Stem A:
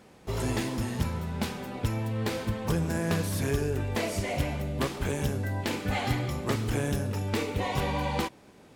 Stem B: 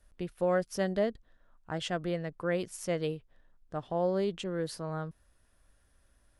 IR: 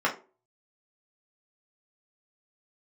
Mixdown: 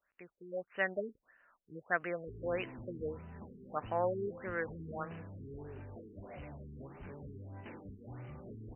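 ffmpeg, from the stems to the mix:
-filter_complex "[0:a]flanger=delay=2.1:depth=7:regen=79:speed=0.74:shape=triangular,asoftclip=type=tanh:threshold=-34dB,adelay=2000,volume=-9dB[a];[1:a]dynaudnorm=f=130:g=11:m=9.5dB,bandpass=f=2.1k:t=q:w=1.4:csg=0,volume=1.5dB[b];[a][b]amix=inputs=2:normalize=0,afftfilt=real='re*lt(b*sr/1024,430*pow(3100/430,0.5+0.5*sin(2*PI*1.6*pts/sr)))':imag='im*lt(b*sr/1024,430*pow(3100/430,0.5+0.5*sin(2*PI*1.6*pts/sr)))':win_size=1024:overlap=0.75"

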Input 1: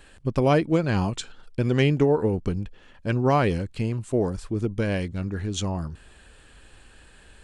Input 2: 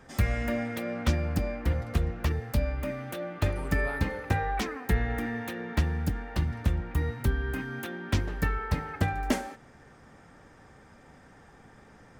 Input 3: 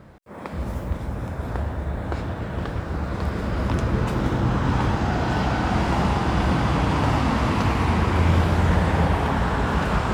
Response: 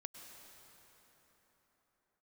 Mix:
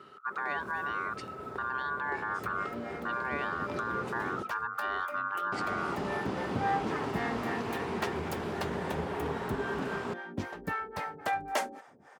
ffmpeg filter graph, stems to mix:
-filter_complex "[0:a]bass=f=250:g=5,treble=f=4k:g=-14,acompressor=threshold=-21dB:ratio=6,aeval=exprs='val(0)*sin(2*PI*1300*n/s)':c=same,volume=-4dB,asplit=2[a][b];[1:a]equalizer=f=820:t=o:w=1.4:g=7,acrossover=split=480[c][d];[c]aeval=exprs='val(0)*(1-1/2+1/2*cos(2*PI*3.7*n/s))':c=same[e];[d]aeval=exprs='val(0)*(1-1/2-1/2*cos(2*PI*3.7*n/s))':c=same[f];[e][f]amix=inputs=2:normalize=0,adelay=2250,volume=-0.5dB[g];[2:a]volume=-13dB,asplit=3[h][i][j];[h]atrim=end=4.43,asetpts=PTS-STARTPTS,afade=t=out:st=4.426:d=0.004:c=hsin[k];[i]atrim=start=4.43:end=5.52,asetpts=PTS-STARTPTS,volume=0[l];[j]atrim=start=5.52,asetpts=PTS-STARTPTS,afade=t=in:d=0.004:c=hsin[m];[k][l][m]concat=n=3:v=0:a=1[n];[b]apad=whole_len=636874[o];[g][o]sidechaincompress=threshold=-35dB:ratio=8:attack=28:release=1050[p];[a][n]amix=inputs=2:normalize=0,equalizer=f=400:t=o:w=0.24:g=13,alimiter=limit=-23dB:level=0:latency=1:release=46,volume=0dB[q];[p][q]amix=inputs=2:normalize=0,highpass=180"

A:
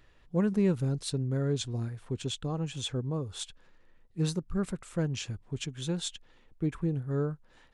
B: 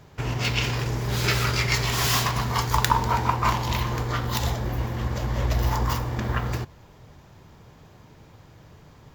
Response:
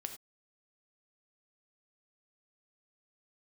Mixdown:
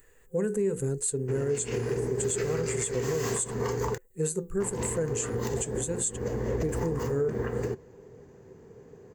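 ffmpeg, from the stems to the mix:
-filter_complex "[0:a]bandreject=f=60:t=h:w=6,bandreject=f=120:t=h:w=6,bandreject=f=180:t=h:w=6,bandreject=f=240:t=h:w=6,bandreject=f=300:t=h:w=6,bandreject=f=360:t=h:w=6,bandreject=f=420:t=h:w=6,flanger=delay=2.8:depth=3.2:regen=87:speed=1:shape=sinusoidal,aexciter=amount=13.6:drive=6.8:freq=8.2k,volume=3dB,asplit=2[a][b];[1:a]equalizer=f=280:w=0.52:g=14,adelay=1100,volume=-13dB,asplit=3[c][d][e];[c]atrim=end=3.98,asetpts=PTS-STARTPTS,afade=t=out:st=3.976:d=0.004:c=hsin[f];[d]atrim=start=3.98:end=4.6,asetpts=PTS-STARTPTS,volume=0[g];[e]atrim=start=4.6,asetpts=PTS-STARTPTS,afade=t=in:d=0.004:c=hsin[h];[f][g][h]concat=n=3:v=0:a=1[i];[b]apad=whole_len=451891[j];[i][j]sidechaincompress=threshold=-35dB:ratio=3:attack=8.2:release=179[k];[a][k]amix=inputs=2:normalize=0,superequalizer=7b=3.98:11b=1.78:13b=0.562:15b=2.51:16b=0.501,alimiter=limit=-19.5dB:level=0:latency=1:release=110"

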